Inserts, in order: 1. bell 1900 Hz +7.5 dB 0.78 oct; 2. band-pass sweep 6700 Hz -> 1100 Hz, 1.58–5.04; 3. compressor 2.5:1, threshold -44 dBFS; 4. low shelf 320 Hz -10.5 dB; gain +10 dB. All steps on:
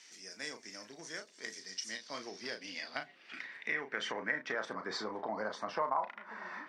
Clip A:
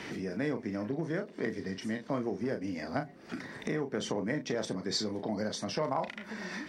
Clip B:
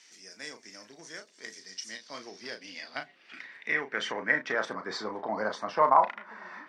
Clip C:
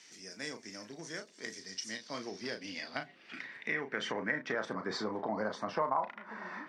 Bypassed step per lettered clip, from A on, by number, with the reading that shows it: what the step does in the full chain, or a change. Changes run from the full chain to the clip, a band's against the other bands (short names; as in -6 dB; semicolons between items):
2, 125 Hz band +16.5 dB; 3, momentary loudness spread change +10 LU; 4, 125 Hz band +7.5 dB